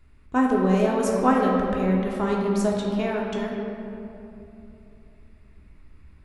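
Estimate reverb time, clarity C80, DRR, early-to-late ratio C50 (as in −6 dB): 3.0 s, 2.0 dB, −2.5 dB, 0.5 dB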